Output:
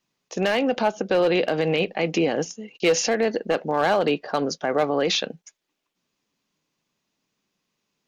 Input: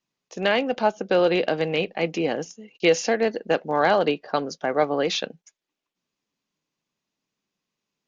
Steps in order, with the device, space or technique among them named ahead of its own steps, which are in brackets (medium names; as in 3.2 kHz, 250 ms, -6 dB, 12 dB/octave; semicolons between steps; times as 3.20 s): clipper into limiter (hard clipper -12.5 dBFS, distortion -20 dB; peak limiter -19 dBFS, peak gain reduction 6.5 dB); trim +6 dB